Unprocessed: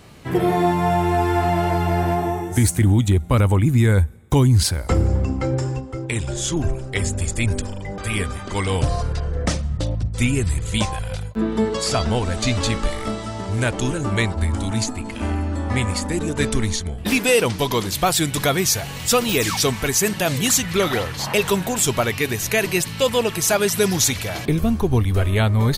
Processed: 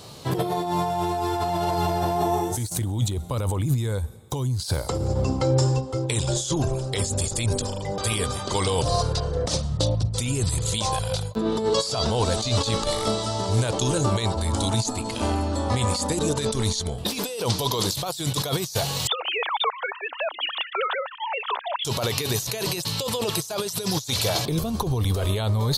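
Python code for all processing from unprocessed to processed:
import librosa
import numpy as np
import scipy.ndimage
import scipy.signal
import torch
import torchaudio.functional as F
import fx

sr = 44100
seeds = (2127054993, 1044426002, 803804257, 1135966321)

y = fx.chain(x, sr, fx.sine_speech(),
    fx.highpass(hz=740.0, slope=24), at=(19.07, 21.85))
y = fx.bass_treble(y, sr, bass_db=-5, treble_db=9)
y = fx.over_compress(y, sr, threshold_db=-24.0, ratio=-1.0)
y = fx.graphic_eq(y, sr, hz=(125, 500, 1000, 2000, 4000), db=(11, 7, 7, -6, 10))
y = y * librosa.db_to_amplitude(-6.5)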